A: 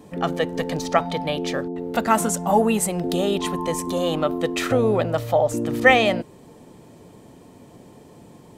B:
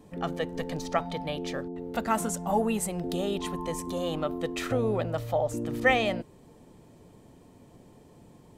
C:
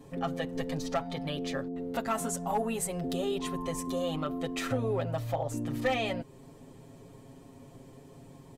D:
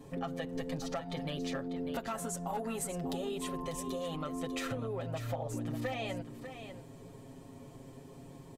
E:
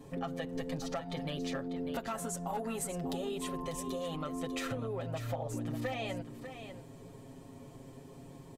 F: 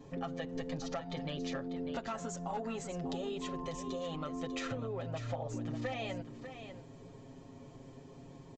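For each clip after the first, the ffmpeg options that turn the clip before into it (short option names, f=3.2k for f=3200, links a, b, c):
-af "lowshelf=f=68:g=12,volume=-8.5dB"
-af "aecho=1:1:7.4:0.85,acompressor=threshold=-36dB:ratio=1.5,aeval=exprs='clip(val(0),-1,0.0708)':c=same"
-filter_complex "[0:a]acompressor=threshold=-34dB:ratio=6,asplit=2[a][b];[b]aecho=0:1:595:0.316[c];[a][c]amix=inputs=2:normalize=0"
-af anull
-af "aresample=16000,aresample=44100,volume=-1.5dB"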